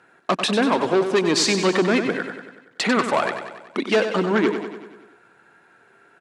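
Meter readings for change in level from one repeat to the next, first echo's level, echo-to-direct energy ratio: −4.5 dB, −8.5 dB, −6.5 dB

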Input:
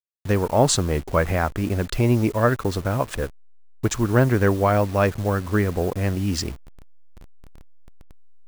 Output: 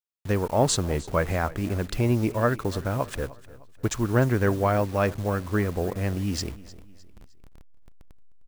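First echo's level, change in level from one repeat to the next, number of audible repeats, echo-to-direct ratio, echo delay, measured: −19.0 dB, −7.5 dB, 3, −18.0 dB, 306 ms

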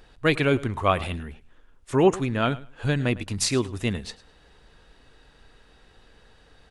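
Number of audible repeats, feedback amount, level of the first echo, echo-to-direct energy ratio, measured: 2, 18%, −19.0 dB, −19.0 dB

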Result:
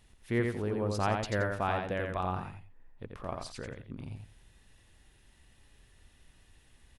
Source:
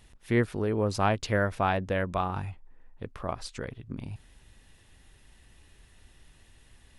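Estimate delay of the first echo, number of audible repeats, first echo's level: 87 ms, 2, −4.0 dB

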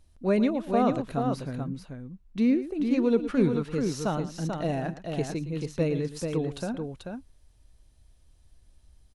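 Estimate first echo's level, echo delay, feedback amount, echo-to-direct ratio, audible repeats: −14.0 dB, 114 ms, repeats not evenly spaced, −5.0 dB, 2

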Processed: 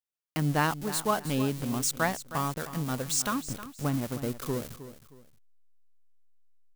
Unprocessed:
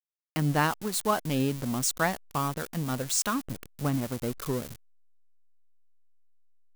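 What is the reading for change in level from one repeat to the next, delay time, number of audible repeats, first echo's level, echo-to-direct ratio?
−10.0 dB, 313 ms, 2, −13.5 dB, −13.0 dB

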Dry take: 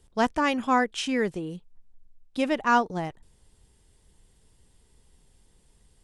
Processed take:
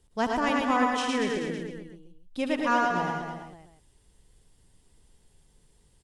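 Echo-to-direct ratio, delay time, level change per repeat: 0.5 dB, 73 ms, repeats not evenly spaced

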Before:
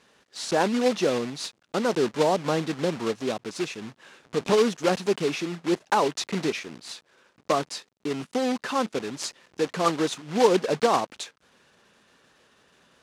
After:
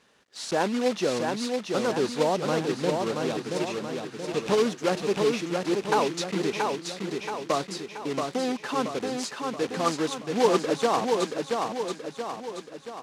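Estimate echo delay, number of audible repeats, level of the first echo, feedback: 678 ms, 6, −4.0 dB, 52%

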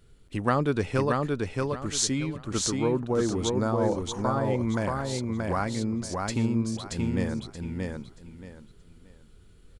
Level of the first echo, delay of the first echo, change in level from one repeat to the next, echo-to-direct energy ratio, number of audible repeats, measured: −3.0 dB, 628 ms, −12.0 dB, −2.5 dB, 3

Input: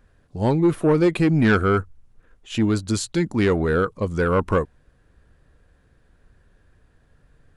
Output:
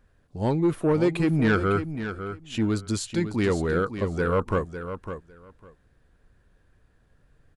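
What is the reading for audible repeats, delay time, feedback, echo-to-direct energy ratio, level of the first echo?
2, 553 ms, 16%, −10.0 dB, −10.0 dB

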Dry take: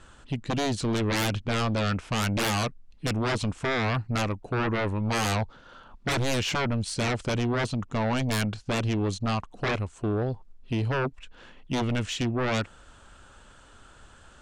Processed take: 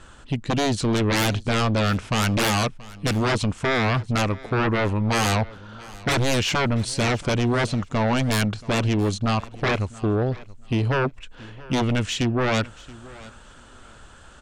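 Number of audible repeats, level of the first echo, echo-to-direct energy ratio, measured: 2, −20.5 dB, −20.5 dB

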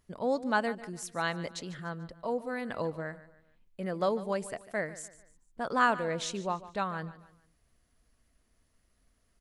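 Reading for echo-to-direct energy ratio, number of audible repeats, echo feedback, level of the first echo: −16.0 dB, 3, 39%, −16.5 dB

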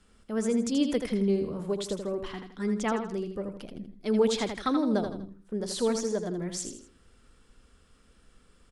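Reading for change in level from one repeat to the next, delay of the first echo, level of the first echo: −8.5 dB, 81 ms, −7.0 dB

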